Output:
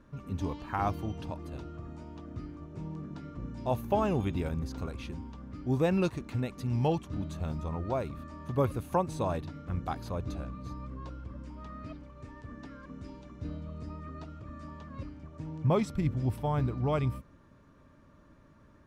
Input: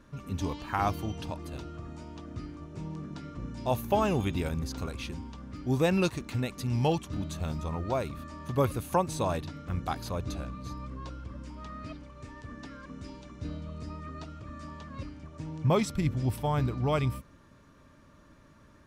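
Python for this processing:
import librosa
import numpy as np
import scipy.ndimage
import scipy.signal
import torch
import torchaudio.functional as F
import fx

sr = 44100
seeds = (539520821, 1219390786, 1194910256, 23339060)

y = fx.high_shelf(x, sr, hz=2200.0, db=-9.0)
y = y * librosa.db_to_amplitude(-1.0)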